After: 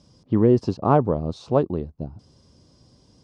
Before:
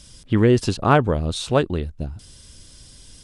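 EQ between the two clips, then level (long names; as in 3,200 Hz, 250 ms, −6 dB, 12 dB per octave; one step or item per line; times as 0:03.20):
high-pass filter 120 Hz 12 dB per octave
high-frequency loss of the air 230 metres
flat-topped bell 2,300 Hz −13.5 dB
0.0 dB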